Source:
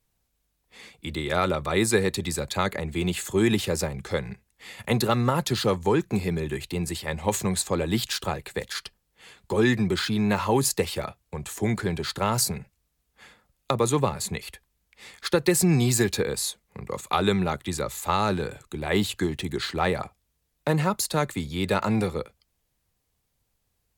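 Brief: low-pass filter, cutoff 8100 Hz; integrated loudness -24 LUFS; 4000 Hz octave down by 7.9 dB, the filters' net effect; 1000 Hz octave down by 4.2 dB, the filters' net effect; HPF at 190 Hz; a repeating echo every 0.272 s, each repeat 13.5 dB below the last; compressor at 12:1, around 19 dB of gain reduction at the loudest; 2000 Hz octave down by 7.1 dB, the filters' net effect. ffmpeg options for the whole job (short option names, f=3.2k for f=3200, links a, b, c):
-af "highpass=190,lowpass=8.1k,equalizer=f=1k:t=o:g=-3.5,equalizer=f=2k:t=o:g=-6,equalizer=f=4k:t=o:g=-7.5,acompressor=threshold=-38dB:ratio=12,aecho=1:1:272|544:0.211|0.0444,volume=19dB"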